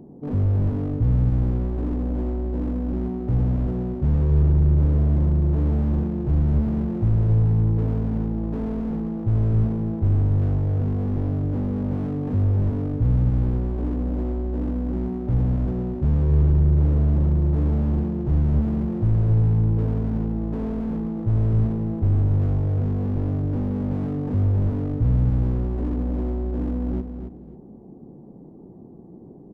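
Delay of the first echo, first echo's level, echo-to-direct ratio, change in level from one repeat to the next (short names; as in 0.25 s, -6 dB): 0.272 s, -8.0 dB, -8.0 dB, -13.5 dB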